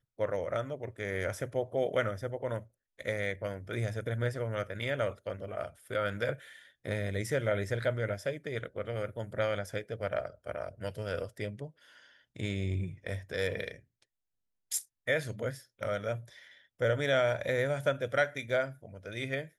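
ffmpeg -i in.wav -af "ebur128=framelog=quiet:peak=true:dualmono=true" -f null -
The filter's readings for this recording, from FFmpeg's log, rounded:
Integrated loudness:
  I:         -31.2 LUFS
  Threshold: -41.6 LUFS
Loudness range:
  LRA:         6.2 LU
  Threshold: -52.0 LUFS
  LRA low:   -34.9 LUFS
  LRA high:  -28.7 LUFS
True peak:
  Peak:      -15.6 dBFS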